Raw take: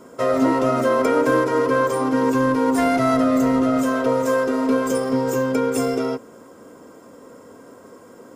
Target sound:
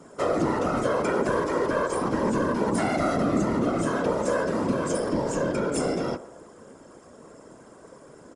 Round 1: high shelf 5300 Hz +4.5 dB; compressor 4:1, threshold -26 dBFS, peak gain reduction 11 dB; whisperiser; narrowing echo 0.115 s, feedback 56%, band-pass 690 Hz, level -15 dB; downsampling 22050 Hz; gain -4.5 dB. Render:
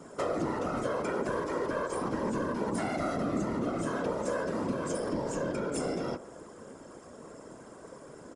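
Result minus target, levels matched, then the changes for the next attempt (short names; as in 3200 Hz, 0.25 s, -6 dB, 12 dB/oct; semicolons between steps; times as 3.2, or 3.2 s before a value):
compressor: peak gain reduction +7.5 dB
change: compressor 4:1, threshold -16 dBFS, peak gain reduction 3.5 dB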